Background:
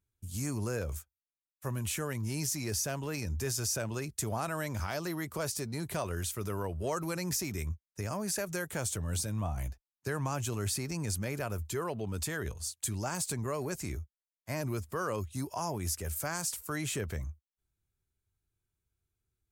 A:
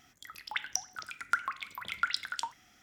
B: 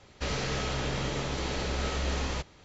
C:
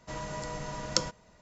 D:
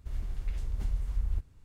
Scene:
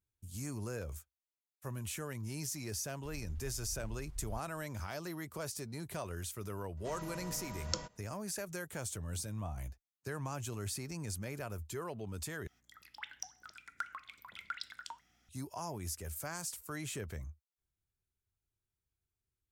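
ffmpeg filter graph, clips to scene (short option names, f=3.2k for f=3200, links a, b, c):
-filter_complex "[0:a]volume=-6.5dB[a];[1:a]aeval=exprs='val(0)+0.000447*(sin(2*PI*60*n/s)+sin(2*PI*2*60*n/s)/2+sin(2*PI*3*60*n/s)/3+sin(2*PI*4*60*n/s)/4+sin(2*PI*5*60*n/s)/5)':c=same[b];[a]asplit=2[c][d];[c]atrim=end=12.474[e];[b]atrim=end=2.82,asetpts=PTS-STARTPTS,volume=-11dB[f];[d]atrim=start=15.286[g];[4:a]atrim=end=1.64,asetpts=PTS-STARTPTS,volume=-14.5dB,afade=t=in:d=0.004:c=hsin,afade=t=out:st=1.636:d=0.004:c=hsin,adelay=2990[h];[3:a]atrim=end=1.41,asetpts=PTS-STARTPTS,volume=-9dB,afade=t=in:d=0.004:c=hsin,afade=t=out:st=1.406:d=0.004:c=hsin,adelay=6770[i];[e][f]acrossfade=d=0.004:c1=hsin:c2=hsin[j];[j][g]acrossfade=d=0.004:c1=hsin:c2=hsin[k];[k][h][i]amix=inputs=3:normalize=0"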